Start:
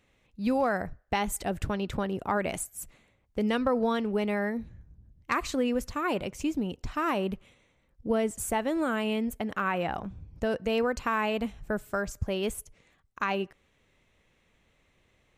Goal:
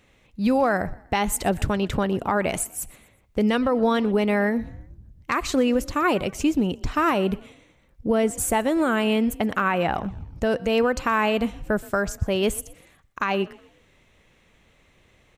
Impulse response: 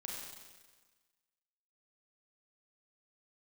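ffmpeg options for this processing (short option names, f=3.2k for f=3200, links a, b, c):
-filter_complex "[0:a]alimiter=limit=-20dB:level=0:latency=1:release=266,asplit=2[a][b];[b]asplit=3[c][d][e];[c]adelay=122,afreqshift=36,volume=-22.5dB[f];[d]adelay=244,afreqshift=72,volume=-30.5dB[g];[e]adelay=366,afreqshift=108,volume=-38.4dB[h];[f][g][h]amix=inputs=3:normalize=0[i];[a][i]amix=inputs=2:normalize=0,volume=8.5dB"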